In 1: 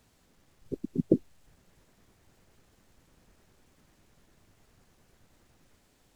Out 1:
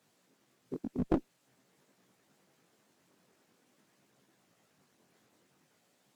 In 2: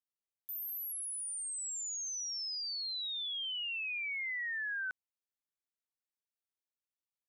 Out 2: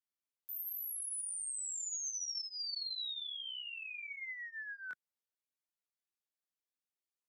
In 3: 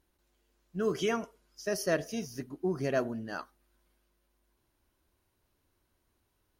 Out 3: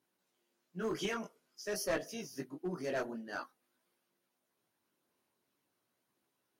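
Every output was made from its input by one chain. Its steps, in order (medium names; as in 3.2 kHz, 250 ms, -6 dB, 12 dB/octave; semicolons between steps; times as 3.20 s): high-pass 150 Hz 24 dB/octave; in parallel at -11 dB: saturation -26 dBFS; on the sum: harmonic-percussive split percussive +7 dB; chorus voices 2, 0.48 Hz, delay 19 ms, depth 4.4 ms; one-sided clip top -25 dBFS; trim -7 dB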